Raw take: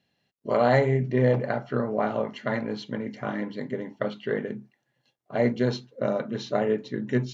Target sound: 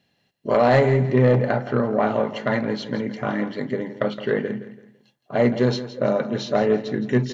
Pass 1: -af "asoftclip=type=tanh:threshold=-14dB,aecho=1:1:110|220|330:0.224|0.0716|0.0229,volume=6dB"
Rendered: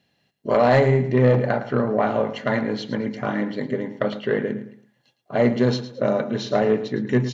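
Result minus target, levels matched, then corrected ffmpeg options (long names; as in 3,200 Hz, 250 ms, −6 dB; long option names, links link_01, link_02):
echo 57 ms early
-af "asoftclip=type=tanh:threshold=-14dB,aecho=1:1:167|334|501:0.224|0.0716|0.0229,volume=6dB"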